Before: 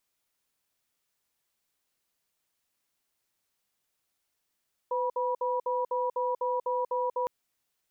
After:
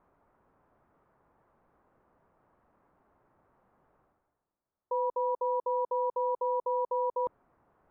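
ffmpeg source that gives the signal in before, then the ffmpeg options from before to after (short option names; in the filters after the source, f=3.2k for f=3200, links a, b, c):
-f lavfi -i "aevalsrc='0.0355*(sin(2*PI*504*t)+sin(2*PI*973*t))*clip(min(mod(t,0.25),0.19-mod(t,0.25))/0.005,0,1)':d=2.36:s=44100"
-af "lowpass=f=1.2k:w=0.5412,lowpass=f=1.2k:w=1.3066,areverse,acompressor=mode=upward:threshold=-50dB:ratio=2.5,areverse"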